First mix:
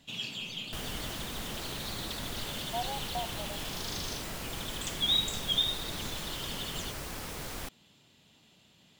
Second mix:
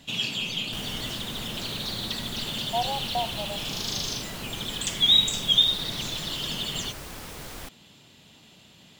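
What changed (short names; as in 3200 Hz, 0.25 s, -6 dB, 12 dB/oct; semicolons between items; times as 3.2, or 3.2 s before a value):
speech +8.0 dB; first sound +9.0 dB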